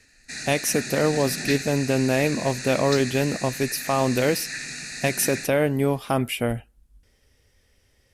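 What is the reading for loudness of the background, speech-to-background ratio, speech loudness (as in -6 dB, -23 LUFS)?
-31.5 LUFS, 8.0 dB, -23.5 LUFS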